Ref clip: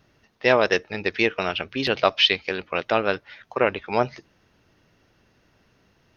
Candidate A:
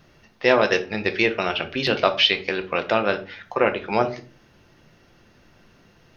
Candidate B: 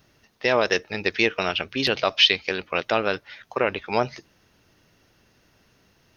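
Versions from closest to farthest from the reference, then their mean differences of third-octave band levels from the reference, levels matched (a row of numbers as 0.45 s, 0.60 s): B, A; 1.5 dB, 3.5 dB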